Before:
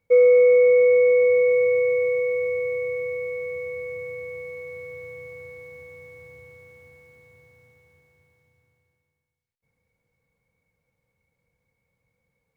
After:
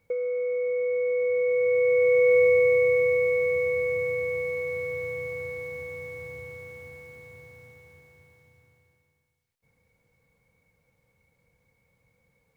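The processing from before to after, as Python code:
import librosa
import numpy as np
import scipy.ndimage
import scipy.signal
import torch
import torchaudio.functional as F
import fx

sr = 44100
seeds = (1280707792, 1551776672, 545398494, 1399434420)

y = fx.over_compress(x, sr, threshold_db=-24.0, ratio=-1.0)
y = y * librosa.db_to_amplitude(1.5)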